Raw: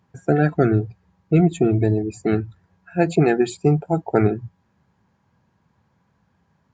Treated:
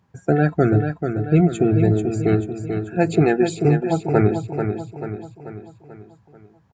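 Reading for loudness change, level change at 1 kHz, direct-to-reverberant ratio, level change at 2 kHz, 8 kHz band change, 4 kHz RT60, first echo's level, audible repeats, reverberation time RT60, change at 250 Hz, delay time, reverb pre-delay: +0.5 dB, +1.0 dB, no reverb, +1.0 dB, +1.0 dB, no reverb, -7.0 dB, 5, no reverb, +1.0 dB, 438 ms, no reverb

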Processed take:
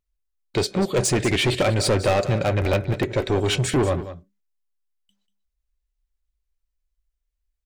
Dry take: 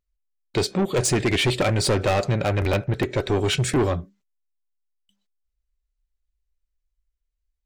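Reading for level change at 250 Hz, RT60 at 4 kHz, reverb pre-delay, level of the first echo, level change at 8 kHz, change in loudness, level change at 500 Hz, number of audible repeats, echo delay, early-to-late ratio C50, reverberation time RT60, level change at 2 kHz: +0.5 dB, no reverb, no reverb, -13.0 dB, 0.0 dB, +0.5 dB, +1.5 dB, 1, 190 ms, no reverb, no reverb, 0.0 dB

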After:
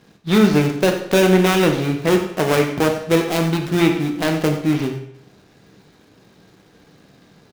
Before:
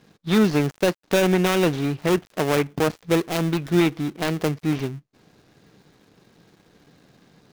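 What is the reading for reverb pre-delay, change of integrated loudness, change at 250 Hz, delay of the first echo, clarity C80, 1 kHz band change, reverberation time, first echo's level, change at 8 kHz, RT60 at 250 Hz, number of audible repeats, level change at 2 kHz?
14 ms, +4.5 dB, +4.5 dB, 92 ms, 9.0 dB, +4.5 dB, 0.75 s, -13.5 dB, +4.5 dB, 0.75 s, 1, +5.0 dB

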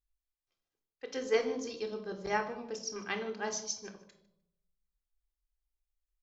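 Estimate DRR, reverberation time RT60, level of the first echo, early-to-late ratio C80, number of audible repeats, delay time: 5.5 dB, 0.80 s, -19.0 dB, 12.5 dB, 1, 152 ms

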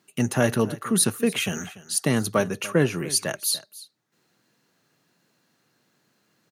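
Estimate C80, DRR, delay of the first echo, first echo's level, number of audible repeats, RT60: no reverb, no reverb, 290 ms, -18.0 dB, 1, no reverb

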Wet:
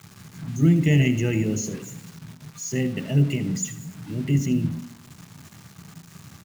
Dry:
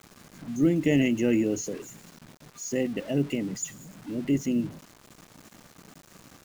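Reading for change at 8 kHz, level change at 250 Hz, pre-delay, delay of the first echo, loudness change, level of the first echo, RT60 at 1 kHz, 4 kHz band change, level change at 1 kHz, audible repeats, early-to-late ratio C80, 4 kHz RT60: +4.0 dB, +2.0 dB, 3 ms, 79 ms, +4.0 dB, -15.0 dB, 1.1 s, +4.0 dB, +1.0 dB, 1, 15.0 dB, 1.1 s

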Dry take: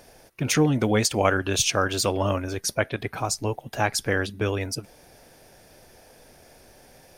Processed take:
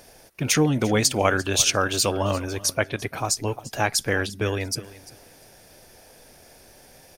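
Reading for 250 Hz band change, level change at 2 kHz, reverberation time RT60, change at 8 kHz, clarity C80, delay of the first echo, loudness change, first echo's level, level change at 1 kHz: 0.0 dB, +1.5 dB, no reverb, +4.0 dB, no reverb, 346 ms, +1.5 dB, -18.5 dB, +0.5 dB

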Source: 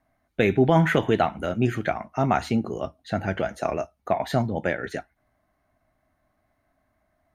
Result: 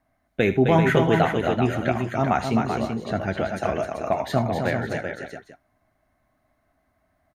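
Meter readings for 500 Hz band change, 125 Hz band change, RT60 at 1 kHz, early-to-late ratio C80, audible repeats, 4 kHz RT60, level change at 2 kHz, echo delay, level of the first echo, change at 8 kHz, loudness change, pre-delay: +2.0 dB, +2.0 dB, no reverb, no reverb, 4, no reverb, +2.0 dB, 76 ms, -15.0 dB, +2.0 dB, +1.5 dB, no reverb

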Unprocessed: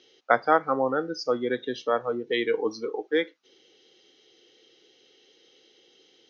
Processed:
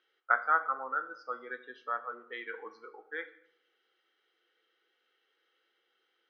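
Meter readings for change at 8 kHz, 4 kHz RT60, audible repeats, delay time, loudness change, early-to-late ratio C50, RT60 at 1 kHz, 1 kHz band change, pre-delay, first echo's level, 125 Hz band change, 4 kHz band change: no reading, 0.55 s, no echo, no echo, -7.5 dB, 14.0 dB, 0.65 s, -5.5 dB, 5 ms, no echo, under -30 dB, -19.5 dB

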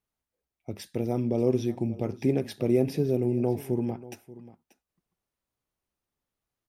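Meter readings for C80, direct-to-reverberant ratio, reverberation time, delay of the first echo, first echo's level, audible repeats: no reverb, no reverb, no reverb, 585 ms, -18.0 dB, 1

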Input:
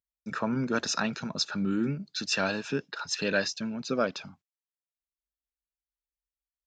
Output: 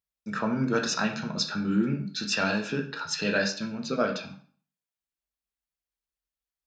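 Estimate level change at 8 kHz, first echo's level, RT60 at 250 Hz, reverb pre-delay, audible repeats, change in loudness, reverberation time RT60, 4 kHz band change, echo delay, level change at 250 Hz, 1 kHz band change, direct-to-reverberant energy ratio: +0.5 dB, no echo, 0.45 s, 6 ms, no echo, +2.0 dB, 0.45 s, +1.0 dB, no echo, +2.5 dB, +2.0 dB, 2.5 dB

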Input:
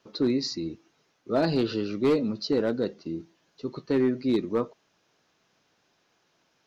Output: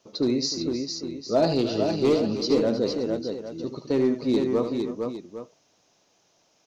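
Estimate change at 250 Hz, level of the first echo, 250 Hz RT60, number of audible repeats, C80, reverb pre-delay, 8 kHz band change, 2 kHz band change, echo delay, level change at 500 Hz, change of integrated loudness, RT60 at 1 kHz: +2.0 dB, -9.0 dB, no reverb, 4, no reverb, no reverb, no reading, -1.5 dB, 75 ms, +4.0 dB, +2.5 dB, no reverb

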